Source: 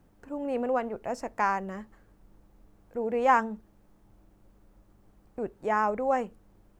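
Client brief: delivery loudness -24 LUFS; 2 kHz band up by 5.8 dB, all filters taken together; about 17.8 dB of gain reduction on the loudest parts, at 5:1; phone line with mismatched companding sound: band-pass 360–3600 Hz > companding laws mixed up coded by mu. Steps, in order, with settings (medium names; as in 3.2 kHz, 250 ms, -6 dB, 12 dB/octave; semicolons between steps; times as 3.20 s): peaking EQ 2 kHz +8 dB; compression 5:1, threshold -35 dBFS; band-pass 360–3600 Hz; companding laws mixed up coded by mu; trim +14.5 dB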